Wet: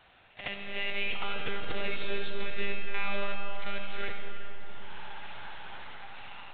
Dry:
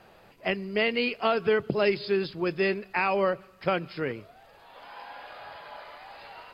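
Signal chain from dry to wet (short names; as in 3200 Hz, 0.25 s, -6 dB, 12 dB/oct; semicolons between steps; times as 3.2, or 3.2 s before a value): block floating point 3-bit; low shelf 440 Hz -11.5 dB; monotone LPC vocoder at 8 kHz 200 Hz; limiter -23 dBFS, peak gain reduction 11.5 dB; high shelf 2100 Hz +9.5 dB; reverse echo 70 ms -8.5 dB; on a send at -3 dB: reverb RT60 4.7 s, pre-delay 35 ms; on the sum: gain -5 dB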